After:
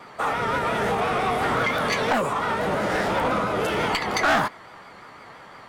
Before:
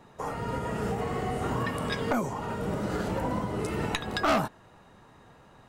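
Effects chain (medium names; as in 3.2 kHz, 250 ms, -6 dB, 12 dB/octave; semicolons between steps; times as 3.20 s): overdrive pedal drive 18 dB, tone 2.9 kHz, clips at -16 dBFS; vibrato 5.8 Hz 70 cents; formant shift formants +3 st; trim +2.5 dB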